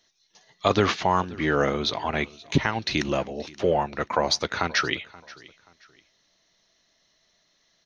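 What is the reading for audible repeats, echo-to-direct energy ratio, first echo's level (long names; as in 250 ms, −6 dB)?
2, −21.0 dB, −21.5 dB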